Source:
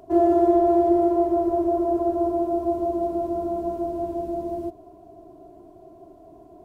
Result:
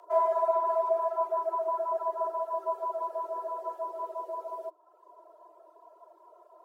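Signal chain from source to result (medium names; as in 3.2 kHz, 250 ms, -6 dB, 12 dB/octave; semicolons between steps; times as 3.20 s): reverb removal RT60 0.9 s; frequency shift +310 Hz; trim -6 dB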